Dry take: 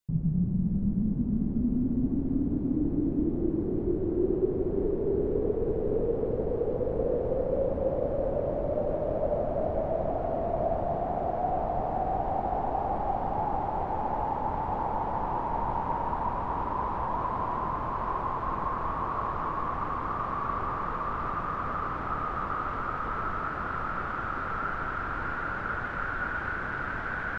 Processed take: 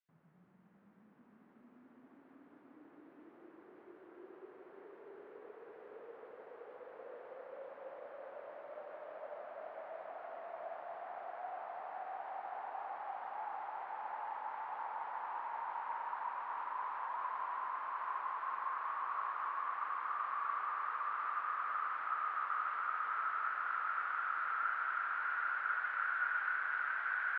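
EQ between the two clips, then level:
four-pole ladder band-pass 2,000 Hz, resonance 25%
high-frequency loss of the air 78 metres
+7.5 dB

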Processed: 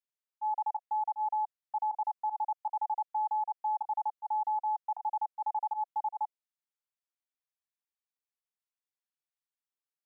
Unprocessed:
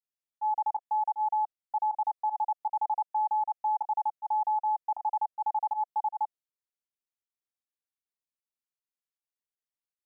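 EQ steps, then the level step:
high-pass filter 570 Hz 24 dB per octave
low-pass filter 1,000 Hz 6 dB per octave
spectral tilt +3.5 dB per octave
0.0 dB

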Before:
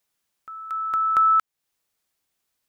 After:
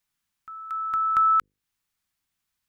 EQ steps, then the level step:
parametric band 510 Hz −15 dB 1.6 octaves
high-shelf EQ 2,100 Hz −9 dB
mains-hum notches 50/100/150/200/250/300/350/400/450/500 Hz
+4.5 dB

